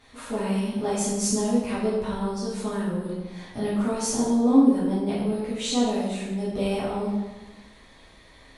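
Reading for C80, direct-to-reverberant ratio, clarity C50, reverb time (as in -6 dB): 3.0 dB, -10.0 dB, 0.0 dB, 1.1 s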